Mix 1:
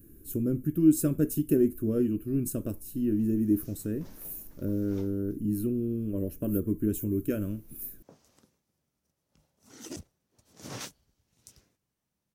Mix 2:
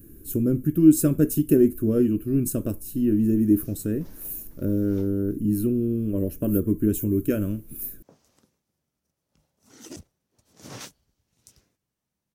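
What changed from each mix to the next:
speech +6.0 dB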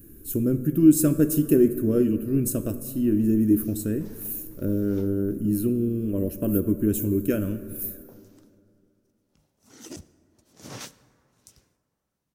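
speech: add low-shelf EQ 430 Hz −3 dB
reverb: on, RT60 2.7 s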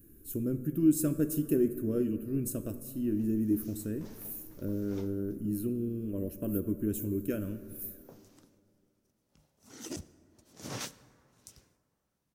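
speech −9.0 dB

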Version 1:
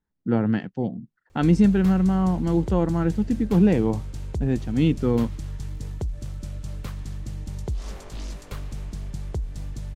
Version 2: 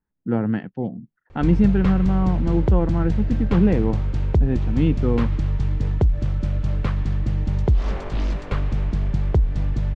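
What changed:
background +11.0 dB
master: add low-pass filter 2,600 Hz 12 dB per octave

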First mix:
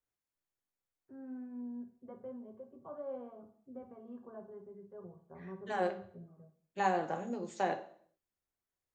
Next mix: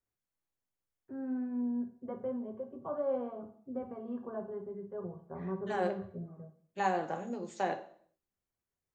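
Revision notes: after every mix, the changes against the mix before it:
first voice +9.0 dB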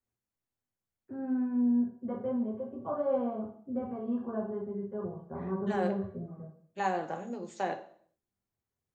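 first voice: send +8.0 dB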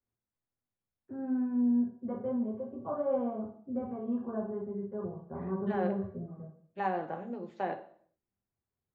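master: add high-frequency loss of the air 340 metres

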